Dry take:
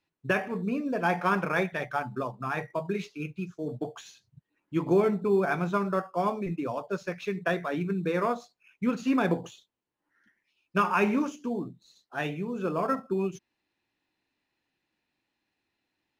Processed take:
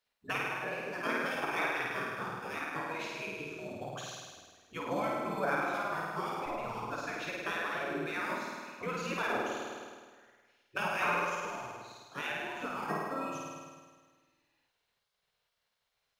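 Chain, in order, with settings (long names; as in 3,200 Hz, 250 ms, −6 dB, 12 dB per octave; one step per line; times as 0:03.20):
flutter between parallel walls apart 8.9 metres, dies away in 1.5 s
gate on every frequency bin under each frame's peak −10 dB weak
in parallel at 0 dB: downward compressor, threshold −38 dBFS, peak gain reduction 14.5 dB
on the sum: level −5.5 dB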